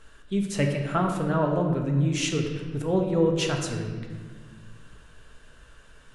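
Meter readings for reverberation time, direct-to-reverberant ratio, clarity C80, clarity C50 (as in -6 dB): 1.6 s, 1.5 dB, 6.0 dB, 4.5 dB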